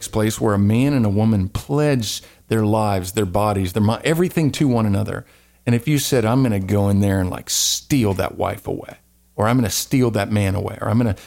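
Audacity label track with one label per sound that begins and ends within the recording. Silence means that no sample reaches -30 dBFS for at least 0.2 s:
2.510000	5.210000	sound
5.670000	8.930000	sound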